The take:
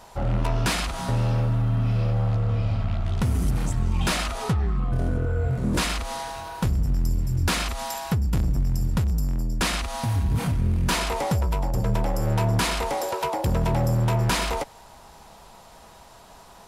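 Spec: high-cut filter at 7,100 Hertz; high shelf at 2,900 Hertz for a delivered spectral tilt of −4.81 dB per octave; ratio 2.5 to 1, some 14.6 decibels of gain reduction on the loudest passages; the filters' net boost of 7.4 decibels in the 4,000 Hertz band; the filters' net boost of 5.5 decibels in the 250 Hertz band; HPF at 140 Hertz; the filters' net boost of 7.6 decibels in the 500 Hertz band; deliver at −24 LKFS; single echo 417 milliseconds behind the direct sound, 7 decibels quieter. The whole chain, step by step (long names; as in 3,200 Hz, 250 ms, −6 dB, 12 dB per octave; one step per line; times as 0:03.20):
high-pass filter 140 Hz
low-pass filter 7,100 Hz
parametric band 250 Hz +7 dB
parametric band 500 Hz +7.5 dB
high-shelf EQ 2,900 Hz +7 dB
parametric band 4,000 Hz +4 dB
downward compressor 2.5 to 1, threshold −39 dBFS
single-tap delay 417 ms −7 dB
level +11.5 dB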